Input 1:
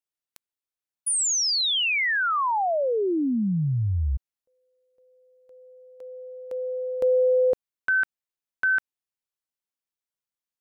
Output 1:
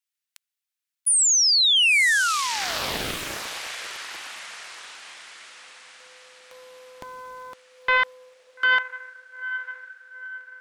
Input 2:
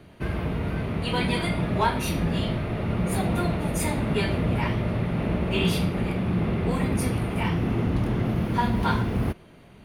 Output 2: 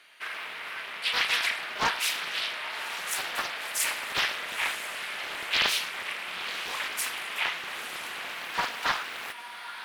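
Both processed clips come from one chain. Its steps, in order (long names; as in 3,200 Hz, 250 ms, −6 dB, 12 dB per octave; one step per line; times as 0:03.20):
Chebyshev high-pass filter 1,900 Hz, order 2
feedback delay with all-pass diffusion 935 ms, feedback 49%, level −10.5 dB
highs frequency-modulated by the lows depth 0.62 ms
level +6 dB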